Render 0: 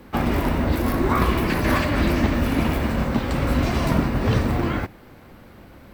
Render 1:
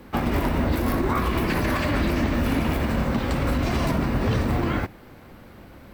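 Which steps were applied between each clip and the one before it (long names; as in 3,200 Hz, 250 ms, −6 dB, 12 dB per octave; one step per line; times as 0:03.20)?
brickwall limiter −14 dBFS, peak gain reduction 8.5 dB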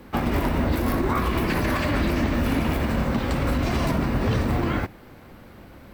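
no processing that can be heard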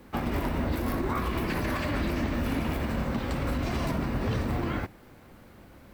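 bit-depth reduction 10 bits, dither none
level −6 dB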